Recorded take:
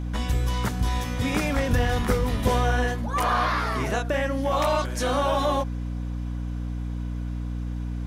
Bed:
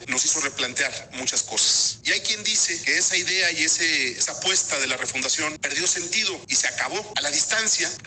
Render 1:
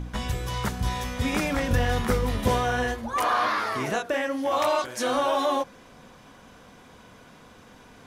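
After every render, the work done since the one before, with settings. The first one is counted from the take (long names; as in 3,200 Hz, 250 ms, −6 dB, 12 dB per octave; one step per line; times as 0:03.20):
hum removal 60 Hz, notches 9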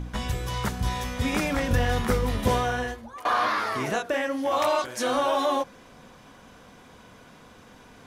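0:02.60–0:03.25: fade out, to −22.5 dB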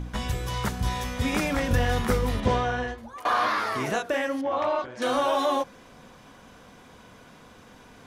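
0:02.40–0:02.98: high-frequency loss of the air 100 metres
0:04.41–0:05.02: head-to-tape spacing loss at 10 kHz 28 dB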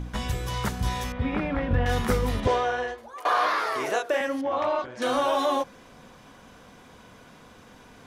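0:01.12–0:01.86: high-frequency loss of the air 450 metres
0:02.47–0:04.21: low shelf with overshoot 280 Hz −11.5 dB, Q 1.5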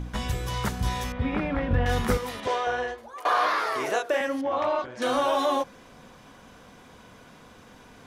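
0:02.17–0:02.67: high-pass filter 680 Hz 6 dB per octave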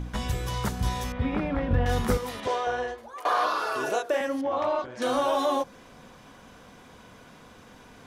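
0:03.46–0:03.95: healed spectral selection 1,400–2,800 Hz after
dynamic equaliser 2,100 Hz, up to −4 dB, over −38 dBFS, Q 0.85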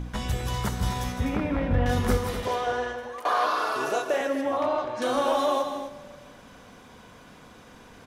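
loudspeakers that aren't time-aligned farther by 55 metres −10 dB, 86 metres −10 dB
four-comb reverb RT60 1.6 s, combs from 29 ms, DRR 13.5 dB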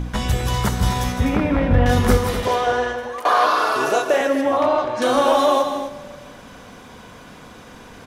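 level +8 dB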